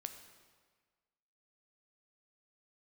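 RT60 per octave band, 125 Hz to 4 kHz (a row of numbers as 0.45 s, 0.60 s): 1.5 s, 1.5 s, 1.5 s, 1.6 s, 1.4 s, 1.3 s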